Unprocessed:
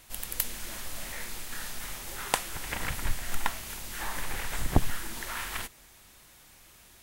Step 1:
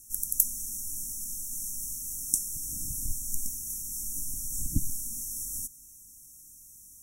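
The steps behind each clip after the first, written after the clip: FFT band-reject 320–5400 Hz; peaking EQ 10 kHz +12.5 dB 2.5 oct; trim -4.5 dB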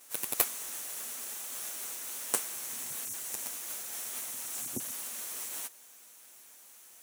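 comb filter that takes the minimum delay 8.3 ms; high-pass 300 Hz 12 dB/octave; trim -1.5 dB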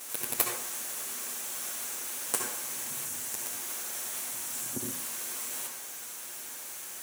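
in parallel at +0.5 dB: compressor with a negative ratio -50 dBFS, ratio -1; on the sum: reverberation RT60 0.60 s, pre-delay 58 ms, DRR 1.5 dB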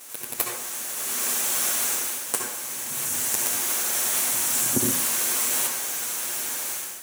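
level rider gain up to 13.5 dB; trim -1 dB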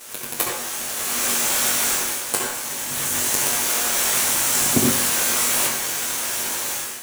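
square wave that keeps the level; on a send: flutter echo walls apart 3.6 m, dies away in 0.2 s

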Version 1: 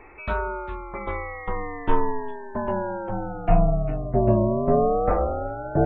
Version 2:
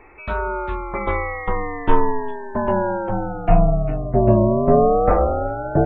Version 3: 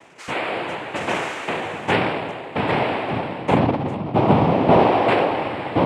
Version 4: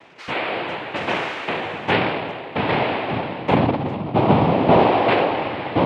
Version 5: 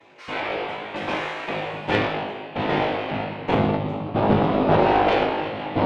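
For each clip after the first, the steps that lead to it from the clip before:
level rider gain up to 8 dB
noise-vocoded speech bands 4
resonant high shelf 5.8 kHz -10.5 dB, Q 1.5
coarse spectral quantiser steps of 15 dB; feedback comb 52 Hz, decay 0.64 s, harmonics all, mix 90%; Chebyshev shaper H 4 -16 dB, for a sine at -12 dBFS; trim +6.5 dB

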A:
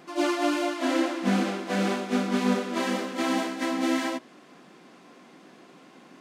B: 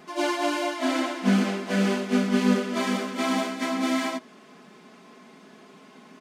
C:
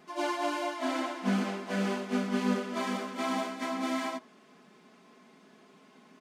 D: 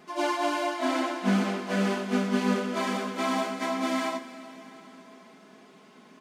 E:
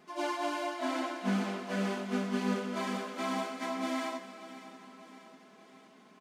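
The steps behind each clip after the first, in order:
comb 4.7 ms, depth 67%
dynamic bell 930 Hz, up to +5 dB, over -42 dBFS, Q 1.2; trim -8 dB
plate-style reverb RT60 4.3 s, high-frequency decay 1×, DRR 11.5 dB; trim +4 dB
feedback delay 593 ms, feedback 57%, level -16 dB; trim -6.5 dB

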